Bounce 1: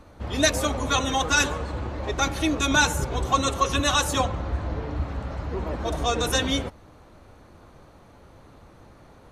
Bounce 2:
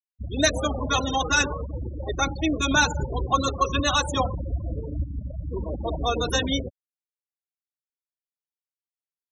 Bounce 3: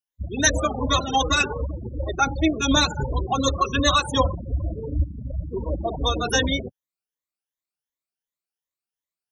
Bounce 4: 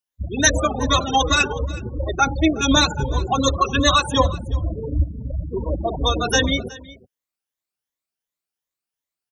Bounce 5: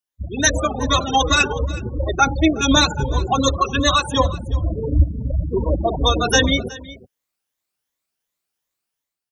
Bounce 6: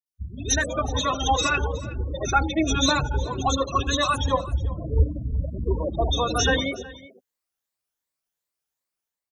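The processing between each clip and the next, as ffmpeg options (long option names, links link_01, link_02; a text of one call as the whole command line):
ffmpeg -i in.wav -af "afftfilt=real='re*gte(hypot(re,im),0.0794)':imag='im*gte(hypot(re,im),0.0794)':win_size=1024:overlap=0.75" out.wav
ffmpeg -i in.wav -af "afftfilt=real='re*pow(10,14/40*sin(2*PI*(1.1*log(max(b,1)*sr/1024/100)/log(2)-(2.7)*(pts-256)/sr)))':imag='im*pow(10,14/40*sin(2*PI*(1.1*log(max(b,1)*sr/1024/100)/log(2)-(2.7)*(pts-256)/sr)))':win_size=1024:overlap=0.75" out.wav
ffmpeg -i in.wav -af "aecho=1:1:368:0.0944,volume=3dB" out.wav
ffmpeg -i in.wav -af "dynaudnorm=framelen=100:gausssize=9:maxgain=8dB,volume=-1dB" out.wav
ffmpeg -i in.wav -filter_complex "[0:a]acrossover=split=240|2800[link_01][link_02][link_03];[link_03]adelay=60[link_04];[link_02]adelay=140[link_05];[link_01][link_05][link_04]amix=inputs=3:normalize=0,volume=-4.5dB" out.wav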